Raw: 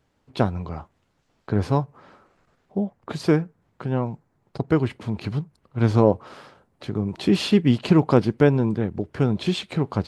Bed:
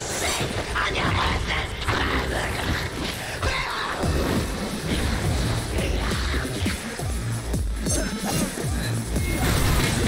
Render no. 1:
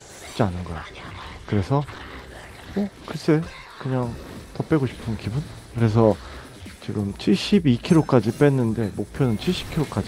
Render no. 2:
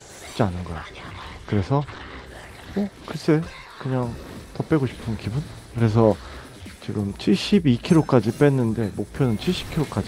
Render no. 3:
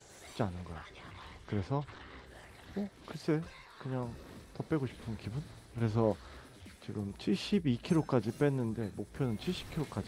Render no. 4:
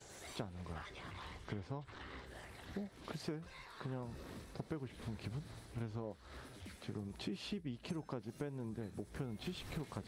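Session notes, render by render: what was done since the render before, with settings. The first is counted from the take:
add bed -14.5 dB
1.60–2.26 s: low-pass 7.7 kHz
trim -13 dB
compression 12:1, threshold -39 dBFS, peak gain reduction 17 dB

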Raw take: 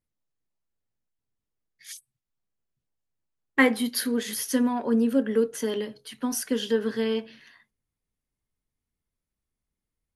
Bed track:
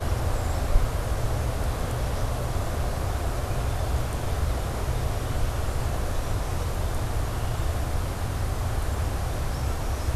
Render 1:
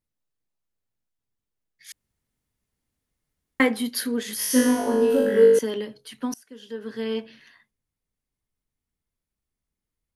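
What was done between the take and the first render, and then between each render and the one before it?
1.92–3.60 s: room tone; 4.37–5.59 s: flutter echo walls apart 3.4 m, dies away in 1.1 s; 6.34–7.17 s: fade in quadratic, from -22 dB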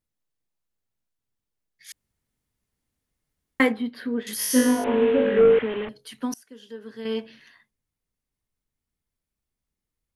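3.72–4.27 s: distance through air 440 m; 4.84–5.89 s: one-bit delta coder 16 kbps, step -27.5 dBFS; 6.43–7.05 s: fade out quadratic, to -6.5 dB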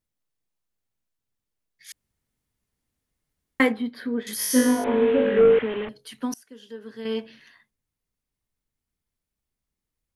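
3.82–5.09 s: band-stop 2.8 kHz, Q 8.6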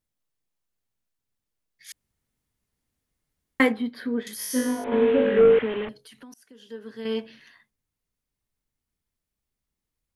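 4.28–4.92 s: gain -6 dB; 6.00–6.68 s: compression 4:1, threshold -46 dBFS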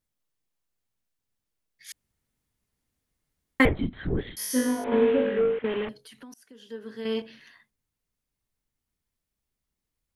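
3.65–4.37 s: LPC vocoder at 8 kHz whisper; 4.95–5.64 s: fade out, to -15.5 dB; 6.79–7.22 s: doubling 42 ms -12 dB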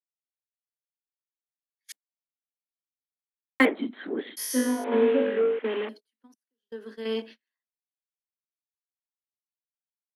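steep high-pass 220 Hz 72 dB/octave; gate -43 dBFS, range -37 dB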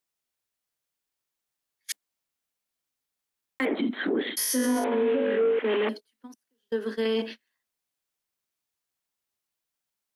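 in parallel at +0.5 dB: compressor with a negative ratio -34 dBFS, ratio -1; on the sum: peak limiter -17.5 dBFS, peak gain reduction 11 dB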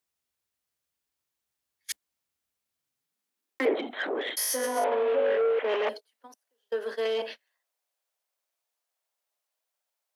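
saturation -20.5 dBFS, distortion -18 dB; high-pass sweep 62 Hz -> 600 Hz, 2.58–3.90 s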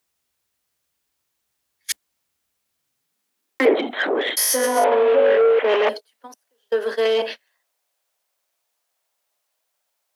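trim +9.5 dB

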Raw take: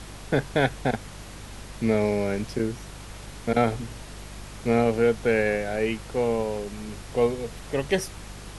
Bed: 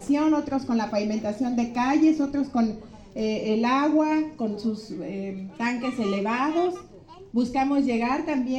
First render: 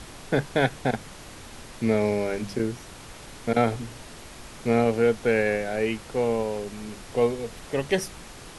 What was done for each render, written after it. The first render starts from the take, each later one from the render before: de-hum 50 Hz, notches 4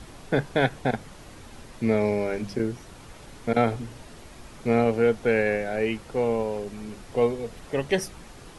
noise reduction 6 dB, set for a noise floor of -44 dBFS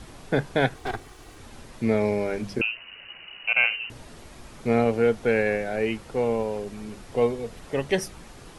0.74–1.39 s: comb filter that takes the minimum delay 2.6 ms; 2.61–3.90 s: frequency inversion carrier 2.9 kHz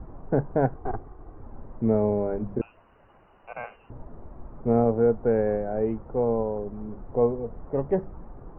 low-pass 1.1 kHz 24 dB/octave; bass shelf 60 Hz +8.5 dB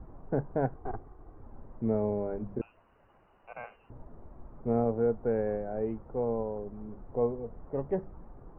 trim -6.5 dB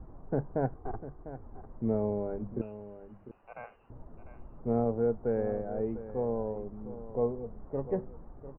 distance through air 410 m; delay 699 ms -13.5 dB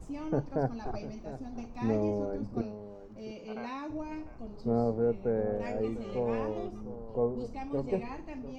add bed -17.5 dB

